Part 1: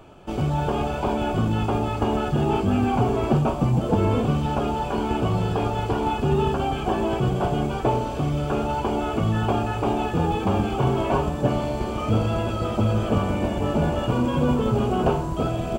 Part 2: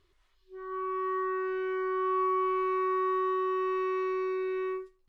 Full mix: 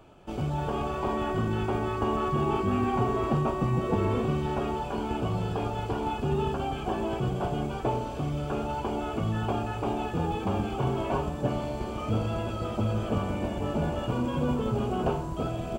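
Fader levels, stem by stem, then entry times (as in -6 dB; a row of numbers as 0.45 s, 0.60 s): -6.5 dB, -3.5 dB; 0.00 s, 0.00 s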